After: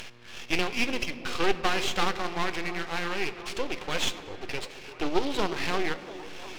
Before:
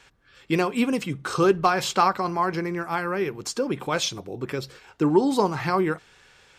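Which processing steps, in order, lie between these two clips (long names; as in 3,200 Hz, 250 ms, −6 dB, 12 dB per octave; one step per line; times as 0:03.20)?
variable-slope delta modulation 32 kbit/s
hum with harmonics 120 Hz, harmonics 15, −50 dBFS −8 dB per octave
three-way crossover with the lows and the highs turned down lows −15 dB, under 290 Hz, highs −17 dB, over 2,600 Hz
upward compression, threshold −37 dBFS
high shelf with overshoot 1,900 Hz +14 dB, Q 1.5
half-wave rectification
echo through a band-pass that steps 346 ms, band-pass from 360 Hz, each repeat 0.7 octaves, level −10 dB
on a send at −13 dB: convolution reverb RT60 3.3 s, pre-delay 6 ms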